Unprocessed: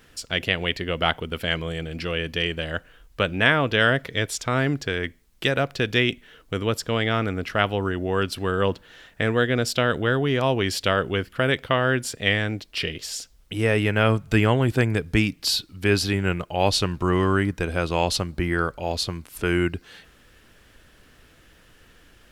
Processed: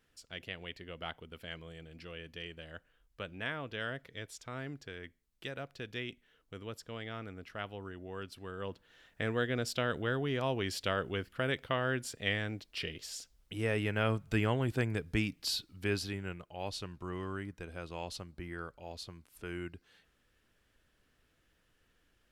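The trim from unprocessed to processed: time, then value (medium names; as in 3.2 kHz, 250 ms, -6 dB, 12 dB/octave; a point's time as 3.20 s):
8.55 s -19.5 dB
9.24 s -11.5 dB
15.80 s -11.5 dB
16.42 s -19 dB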